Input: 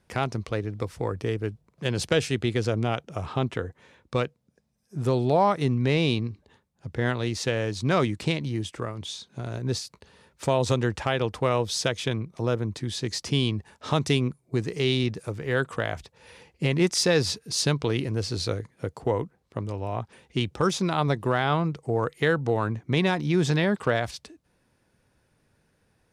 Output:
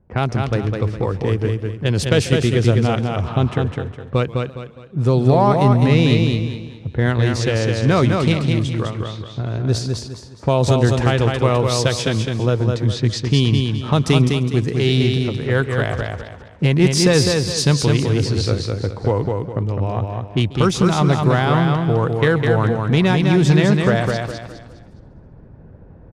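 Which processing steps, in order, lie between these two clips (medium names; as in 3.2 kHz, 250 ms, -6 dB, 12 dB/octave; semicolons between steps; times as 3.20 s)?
in parallel at -7.5 dB: one-sided clip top -21 dBFS; on the sum: level-controlled noise filter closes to 730 Hz, open at -20.5 dBFS; reverse; upward compressor, threshold -36 dBFS; reverse; bass shelf 160 Hz +9 dB; feedback delay 206 ms, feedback 34%, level -4 dB; modulated delay 136 ms, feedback 56%, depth 148 cents, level -20 dB; trim +2 dB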